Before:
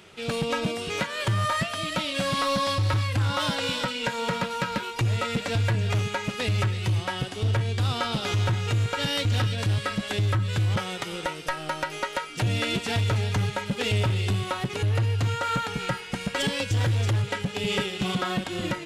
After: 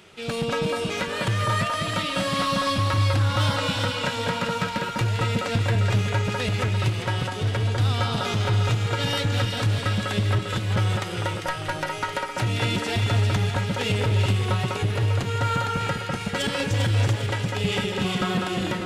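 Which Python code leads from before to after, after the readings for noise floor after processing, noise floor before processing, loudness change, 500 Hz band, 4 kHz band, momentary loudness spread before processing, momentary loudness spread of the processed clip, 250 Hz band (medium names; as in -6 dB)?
-32 dBFS, -37 dBFS, +2.0 dB, +2.5 dB, +1.5 dB, 5 LU, 5 LU, +2.5 dB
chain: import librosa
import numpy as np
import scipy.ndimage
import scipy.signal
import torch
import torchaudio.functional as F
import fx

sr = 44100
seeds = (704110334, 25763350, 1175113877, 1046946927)

y = fx.echo_alternate(x, sr, ms=199, hz=1800.0, feedback_pct=68, wet_db=-2)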